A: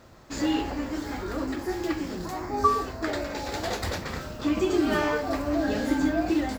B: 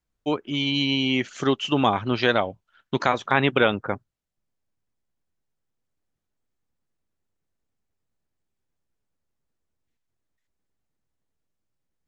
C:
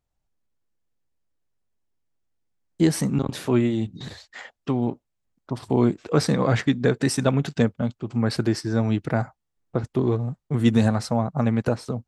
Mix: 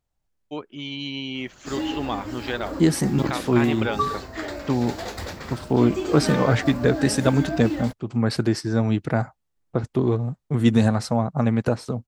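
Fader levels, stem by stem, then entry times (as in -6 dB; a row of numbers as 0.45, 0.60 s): -2.5, -8.0, +1.0 dB; 1.35, 0.25, 0.00 s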